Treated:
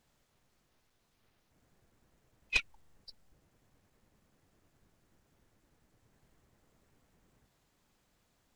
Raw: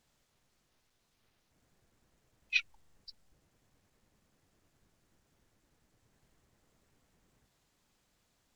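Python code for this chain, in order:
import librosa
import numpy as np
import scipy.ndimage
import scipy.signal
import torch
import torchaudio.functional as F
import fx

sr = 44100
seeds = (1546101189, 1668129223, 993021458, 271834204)

y = fx.tracing_dist(x, sr, depth_ms=0.038)
y = fx.peak_eq(y, sr, hz=5800.0, db=-4.0, octaves=2.6)
y = F.gain(torch.from_numpy(y), 2.5).numpy()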